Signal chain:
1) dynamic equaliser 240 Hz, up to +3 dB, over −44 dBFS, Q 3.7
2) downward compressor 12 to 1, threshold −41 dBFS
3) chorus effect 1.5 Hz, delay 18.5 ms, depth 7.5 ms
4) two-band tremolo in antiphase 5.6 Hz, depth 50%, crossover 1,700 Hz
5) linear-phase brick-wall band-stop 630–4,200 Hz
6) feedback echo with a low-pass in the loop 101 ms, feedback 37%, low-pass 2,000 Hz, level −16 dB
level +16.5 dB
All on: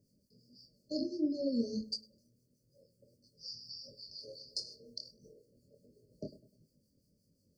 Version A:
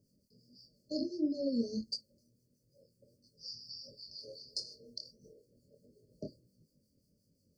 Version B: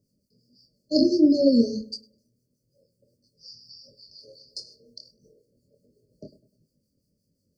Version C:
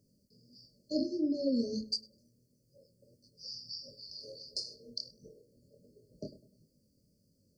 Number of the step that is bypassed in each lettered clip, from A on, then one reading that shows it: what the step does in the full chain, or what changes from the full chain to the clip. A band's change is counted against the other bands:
6, echo-to-direct ratio −17.5 dB to none audible
2, average gain reduction 6.5 dB
4, change in momentary loudness spread +1 LU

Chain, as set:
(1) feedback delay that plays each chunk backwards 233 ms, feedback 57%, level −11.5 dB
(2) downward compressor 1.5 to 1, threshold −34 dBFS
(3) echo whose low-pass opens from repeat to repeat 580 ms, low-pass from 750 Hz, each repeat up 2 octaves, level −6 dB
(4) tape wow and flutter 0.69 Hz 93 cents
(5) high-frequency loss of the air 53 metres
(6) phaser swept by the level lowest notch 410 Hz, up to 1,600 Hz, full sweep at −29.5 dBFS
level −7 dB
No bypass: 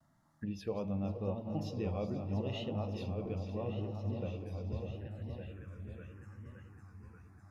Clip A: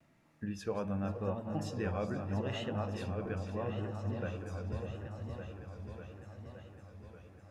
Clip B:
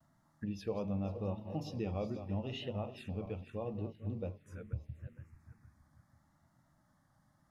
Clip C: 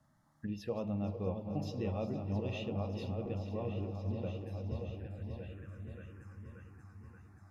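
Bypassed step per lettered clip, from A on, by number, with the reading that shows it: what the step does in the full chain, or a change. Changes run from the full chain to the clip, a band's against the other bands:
6, 2 kHz band +6.5 dB
3, change in momentary loudness spread −3 LU
4, 4 kHz band −2.0 dB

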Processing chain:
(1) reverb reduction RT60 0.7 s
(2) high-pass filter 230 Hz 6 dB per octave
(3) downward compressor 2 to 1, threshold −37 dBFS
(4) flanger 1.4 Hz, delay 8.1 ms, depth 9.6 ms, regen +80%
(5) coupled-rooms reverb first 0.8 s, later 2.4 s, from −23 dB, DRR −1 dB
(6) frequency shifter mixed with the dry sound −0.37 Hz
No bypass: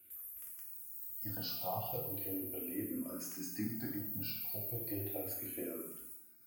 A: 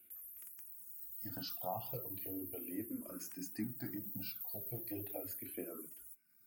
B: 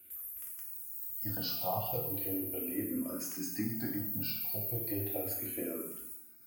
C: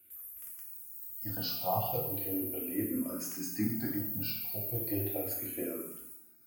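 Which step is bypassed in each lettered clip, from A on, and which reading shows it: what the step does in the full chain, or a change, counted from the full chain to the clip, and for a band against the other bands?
5, change in integrated loudness −3.5 LU
4, change in integrated loudness +4.5 LU
3, average gain reduction 4.0 dB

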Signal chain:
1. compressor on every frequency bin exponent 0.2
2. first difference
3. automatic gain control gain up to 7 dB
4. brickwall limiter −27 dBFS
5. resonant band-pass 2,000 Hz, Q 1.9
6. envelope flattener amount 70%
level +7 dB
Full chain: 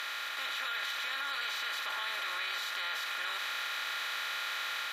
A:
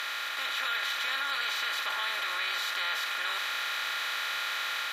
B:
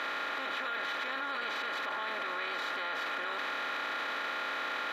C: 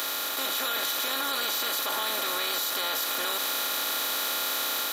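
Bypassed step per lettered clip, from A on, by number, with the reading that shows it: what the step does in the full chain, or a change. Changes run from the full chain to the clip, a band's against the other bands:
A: 4, average gain reduction 1.5 dB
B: 2, 500 Hz band +12.5 dB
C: 5, 2 kHz band −10.5 dB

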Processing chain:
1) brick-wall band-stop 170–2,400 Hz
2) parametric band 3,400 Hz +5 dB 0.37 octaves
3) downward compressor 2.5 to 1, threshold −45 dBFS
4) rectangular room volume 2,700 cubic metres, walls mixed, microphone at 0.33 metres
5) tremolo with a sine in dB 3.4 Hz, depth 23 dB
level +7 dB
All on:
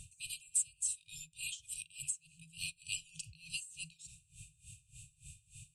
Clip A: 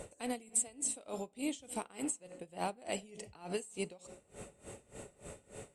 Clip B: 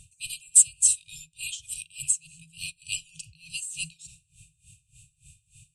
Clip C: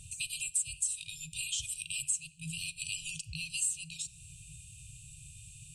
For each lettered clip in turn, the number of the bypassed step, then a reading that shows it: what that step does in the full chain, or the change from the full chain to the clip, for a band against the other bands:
1, 125 Hz band +5.5 dB
3, average gain reduction 7.0 dB
5, change in integrated loudness +5.0 LU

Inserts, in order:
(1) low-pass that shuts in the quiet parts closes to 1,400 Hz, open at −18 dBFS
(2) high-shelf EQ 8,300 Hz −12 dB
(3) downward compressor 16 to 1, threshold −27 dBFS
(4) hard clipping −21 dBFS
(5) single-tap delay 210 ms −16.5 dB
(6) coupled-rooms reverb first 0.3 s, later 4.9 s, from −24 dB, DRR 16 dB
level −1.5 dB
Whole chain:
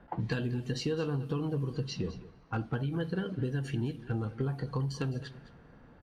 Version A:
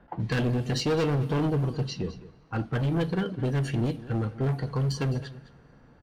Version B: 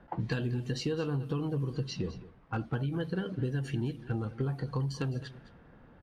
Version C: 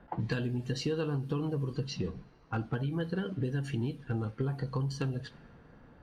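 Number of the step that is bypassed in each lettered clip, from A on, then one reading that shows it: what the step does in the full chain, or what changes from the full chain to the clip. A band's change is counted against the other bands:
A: 3, average gain reduction 6.5 dB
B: 6, echo-to-direct ratio −13.0 dB to −16.5 dB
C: 5, echo-to-direct ratio −13.0 dB to −16.0 dB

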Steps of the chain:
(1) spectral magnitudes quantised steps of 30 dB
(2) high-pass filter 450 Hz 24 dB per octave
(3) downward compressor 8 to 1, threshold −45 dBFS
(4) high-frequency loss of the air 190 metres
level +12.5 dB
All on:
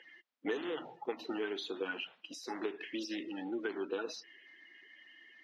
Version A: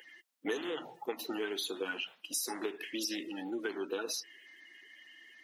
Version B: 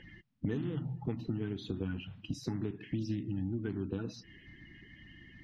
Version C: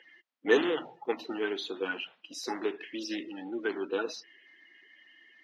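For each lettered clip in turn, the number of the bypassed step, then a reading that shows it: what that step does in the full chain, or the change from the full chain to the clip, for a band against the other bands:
4, 8 kHz band +13.5 dB
2, 250 Hz band +11.5 dB
3, average gain reduction 3.5 dB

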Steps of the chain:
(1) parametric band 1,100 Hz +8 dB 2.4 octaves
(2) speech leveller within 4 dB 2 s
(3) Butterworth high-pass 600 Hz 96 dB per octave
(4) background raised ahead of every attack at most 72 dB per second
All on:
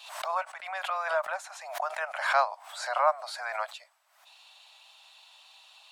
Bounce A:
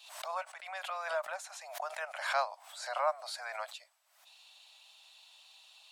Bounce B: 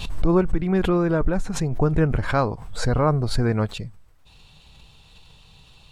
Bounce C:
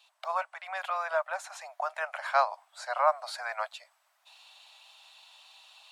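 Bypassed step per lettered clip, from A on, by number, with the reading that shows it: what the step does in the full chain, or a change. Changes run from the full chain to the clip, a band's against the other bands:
1, 8 kHz band +4.0 dB
3, 500 Hz band +7.5 dB
4, 500 Hz band +2.5 dB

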